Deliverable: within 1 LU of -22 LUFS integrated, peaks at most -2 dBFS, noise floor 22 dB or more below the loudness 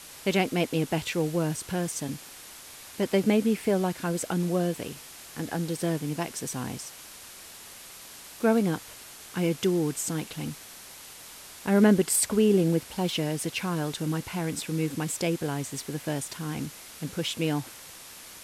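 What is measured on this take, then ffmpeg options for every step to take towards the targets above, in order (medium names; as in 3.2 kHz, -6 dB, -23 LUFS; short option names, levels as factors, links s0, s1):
noise floor -46 dBFS; noise floor target -50 dBFS; loudness -28.0 LUFS; peak level -10.0 dBFS; loudness target -22.0 LUFS
-> -af "afftdn=nr=6:nf=-46"
-af "volume=2"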